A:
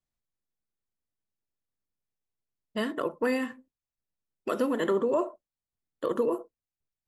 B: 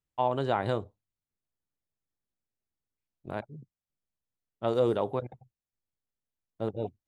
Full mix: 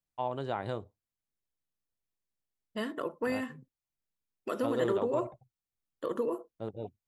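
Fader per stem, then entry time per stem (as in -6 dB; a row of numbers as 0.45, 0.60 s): -5.0, -6.5 dB; 0.00, 0.00 s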